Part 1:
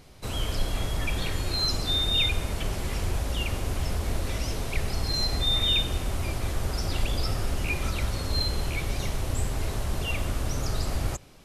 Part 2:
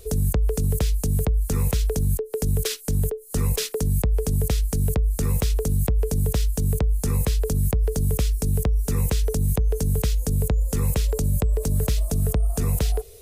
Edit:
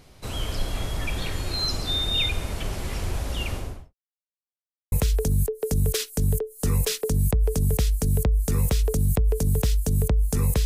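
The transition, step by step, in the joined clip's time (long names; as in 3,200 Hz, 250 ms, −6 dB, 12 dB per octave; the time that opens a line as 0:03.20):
part 1
0:03.49–0:03.94: fade out and dull
0:03.94–0:04.92: silence
0:04.92: continue with part 2 from 0:01.63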